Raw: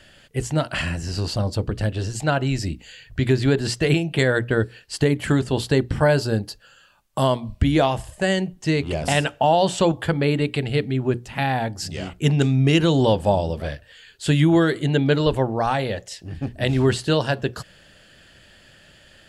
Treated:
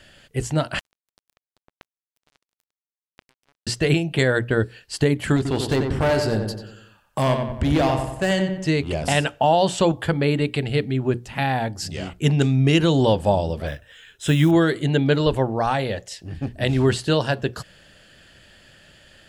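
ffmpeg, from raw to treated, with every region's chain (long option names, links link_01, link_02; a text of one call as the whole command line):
ffmpeg -i in.wav -filter_complex "[0:a]asettb=1/sr,asplit=3[link_01][link_02][link_03];[link_01]atrim=end=0.794[link_04];[link_02]atrim=start=0.79:end=3.67,asetpts=PTS-STARTPTS,afade=type=in:duration=0.004:curve=qsin,afade=type=out:start_time=2.876:duration=0.004:curve=qsin,highshelf=frequency=7900:gain=-3.5,acompressor=threshold=-25dB:ratio=6:attack=3.2:release=140:knee=1:detection=peak,acrusher=bits=2:mix=0:aa=0.5[link_05];[link_03]atrim=start=3.666[link_06];[link_04][link_05]acrossfade=duration=0.004:curve1=hsin:curve2=qsin[link_07];[link_07][link_06]acrossfade=duration=0.004:curve1=qsin:curve2=hsin,asettb=1/sr,asplit=3[link_08][link_09][link_10];[link_08]atrim=end=5.364[link_11];[link_09]atrim=start=5.36:end=8.68,asetpts=PTS-STARTPTS,afade=type=in:duration=0.004:curve=qsin,afade=type=out:start_time=3.316:duration=0.004:curve=qsin,volume=16dB,asoftclip=hard,volume=-16dB,asplit=2[link_12][link_13];[link_13]adelay=91,lowpass=frequency=2500:poles=1,volume=-5dB,asplit=2[link_14][link_15];[link_15]adelay=91,lowpass=frequency=2500:poles=1,volume=0.51,asplit=2[link_16][link_17];[link_17]adelay=91,lowpass=frequency=2500:poles=1,volume=0.51,asplit=2[link_18][link_19];[link_19]adelay=91,lowpass=frequency=2500:poles=1,volume=0.51,asplit=2[link_20][link_21];[link_21]adelay=91,lowpass=frequency=2500:poles=1,volume=0.51,asplit=2[link_22][link_23];[link_23]adelay=91,lowpass=frequency=2500:poles=1,volume=0.51[link_24];[link_12][link_14][link_16][link_18][link_20][link_22][link_24]amix=inputs=7:normalize=0,atrim=end_sample=146412[link_25];[link_10]atrim=start=8.676[link_26];[link_11][link_25]acrossfade=duration=0.004:curve1=hsin:curve2=qsin[link_27];[link_27][link_26]acrossfade=duration=0.004:curve1=qsin:curve2=hsin,asettb=1/sr,asplit=3[link_28][link_29][link_30];[link_28]atrim=end=13.674[link_31];[link_29]atrim=start=13.67:end=14.51,asetpts=PTS-STARTPTS,afade=type=in:duration=0.004:curve=qsin,afade=type=out:start_time=0.836:duration=0.004:curve=qsin,equalizer=frequency=1400:width=3.9:gain=3,acrusher=bits=7:mode=log:mix=0:aa=0.000001,asuperstop=centerf=4500:order=8:qfactor=6.2[link_32];[link_30]atrim=start=14.506[link_33];[link_31][link_32]acrossfade=duration=0.004:curve1=hsin:curve2=qsin[link_34];[link_34][link_33]acrossfade=duration=0.004:curve1=qsin:curve2=hsin" out.wav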